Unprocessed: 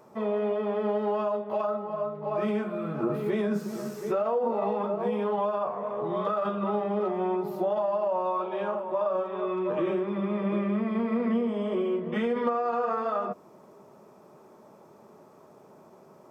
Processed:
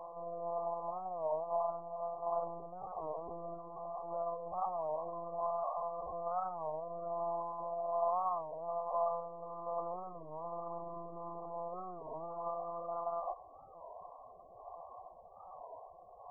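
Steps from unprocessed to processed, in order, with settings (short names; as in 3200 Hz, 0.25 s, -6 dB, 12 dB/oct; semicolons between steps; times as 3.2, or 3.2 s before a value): per-bin compression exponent 0.6; monotone LPC vocoder at 8 kHz 170 Hz; vocal tract filter a; rotary speaker horn 1.2 Hz; reverse echo 0.681 s -8.5 dB; loudest bins only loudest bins 32; record warp 33 1/3 rpm, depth 160 cents; gain +1.5 dB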